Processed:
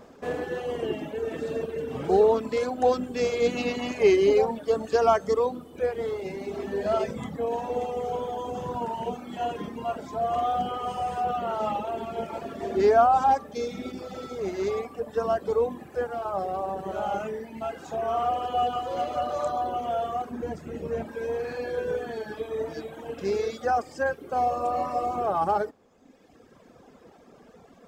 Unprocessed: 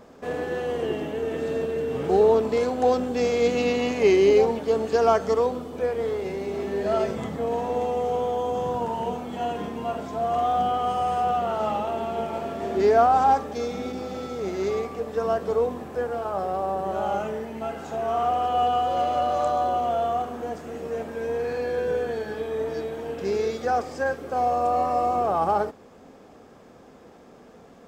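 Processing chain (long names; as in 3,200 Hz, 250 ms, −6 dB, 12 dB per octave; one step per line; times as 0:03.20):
reverb reduction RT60 1.6 s
0:20.31–0:21.06: bass and treble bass +10 dB, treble −3 dB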